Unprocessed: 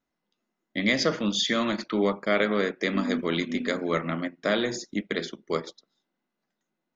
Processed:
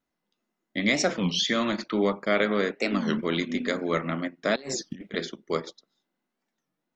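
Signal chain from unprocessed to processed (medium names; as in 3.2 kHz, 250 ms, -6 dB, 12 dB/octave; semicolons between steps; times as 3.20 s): 4.56–5.15 s: compressor with a negative ratio -34 dBFS, ratio -0.5; warped record 33 1/3 rpm, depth 250 cents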